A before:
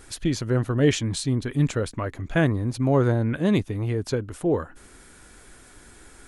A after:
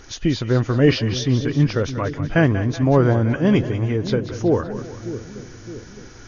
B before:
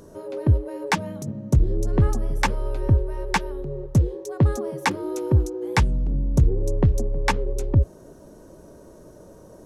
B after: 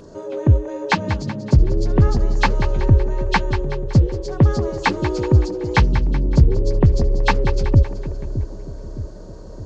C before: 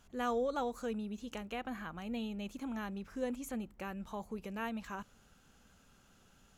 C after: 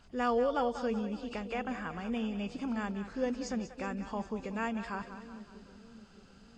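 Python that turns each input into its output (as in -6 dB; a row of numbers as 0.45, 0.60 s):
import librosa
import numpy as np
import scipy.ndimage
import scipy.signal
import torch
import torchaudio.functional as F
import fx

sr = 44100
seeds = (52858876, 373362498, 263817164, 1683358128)

y = fx.freq_compress(x, sr, knee_hz=2500.0, ratio=1.5)
y = fx.echo_split(y, sr, split_hz=460.0, low_ms=614, high_ms=188, feedback_pct=52, wet_db=-11)
y = y * 10.0 ** (4.5 / 20.0)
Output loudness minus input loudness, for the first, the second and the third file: +5.0, +5.0, +5.0 LU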